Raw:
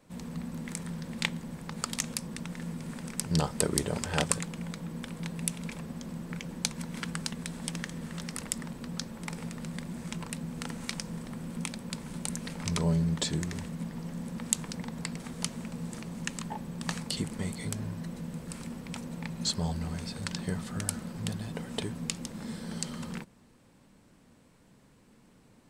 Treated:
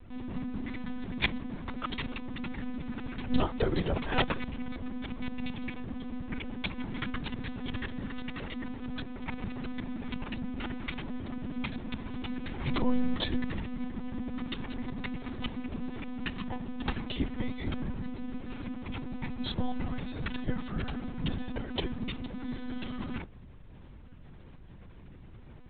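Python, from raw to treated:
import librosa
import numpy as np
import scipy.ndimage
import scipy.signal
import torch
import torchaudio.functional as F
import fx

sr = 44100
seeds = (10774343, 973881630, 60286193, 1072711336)

y = fx.dmg_buzz(x, sr, base_hz=50.0, harmonics=6, level_db=-52.0, tilt_db=-8, odd_only=False)
y = fx.peak_eq(y, sr, hz=65.0, db=-2.0, octaves=0.47)
y = fx.lpc_monotone(y, sr, seeds[0], pitch_hz=250.0, order=16)
y = F.gain(torch.from_numpy(y), 2.5).numpy()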